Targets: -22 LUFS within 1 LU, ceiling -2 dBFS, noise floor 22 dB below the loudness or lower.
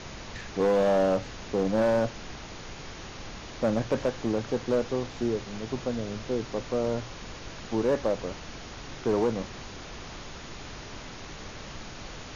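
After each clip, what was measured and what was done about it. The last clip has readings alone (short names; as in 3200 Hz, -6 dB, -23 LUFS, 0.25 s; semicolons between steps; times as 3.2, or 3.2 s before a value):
clipped 0.9%; flat tops at -18.5 dBFS; noise floor -42 dBFS; noise floor target -51 dBFS; loudness -28.5 LUFS; peak -18.5 dBFS; loudness target -22.0 LUFS
-> clip repair -18.5 dBFS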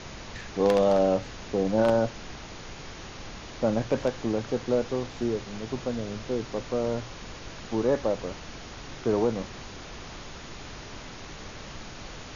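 clipped 0.0%; noise floor -42 dBFS; noise floor target -50 dBFS
-> noise print and reduce 8 dB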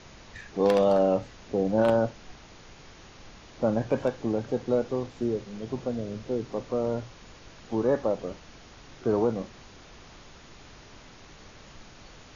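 noise floor -50 dBFS; loudness -28.0 LUFS; peak -9.5 dBFS; loudness target -22.0 LUFS
-> gain +6 dB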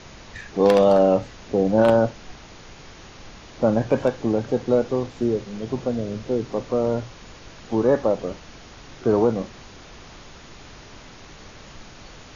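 loudness -22.0 LUFS; peak -3.5 dBFS; noise floor -44 dBFS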